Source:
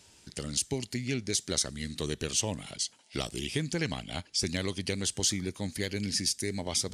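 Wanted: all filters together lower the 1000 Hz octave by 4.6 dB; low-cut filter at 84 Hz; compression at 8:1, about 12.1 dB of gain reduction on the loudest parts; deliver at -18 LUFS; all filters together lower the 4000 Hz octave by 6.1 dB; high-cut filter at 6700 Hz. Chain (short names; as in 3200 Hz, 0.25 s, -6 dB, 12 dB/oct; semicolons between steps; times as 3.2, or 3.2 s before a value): HPF 84 Hz; LPF 6700 Hz; bell 1000 Hz -6 dB; bell 4000 Hz -7 dB; compressor 8:1, threshold -41 dBFS; gain +27.5 dB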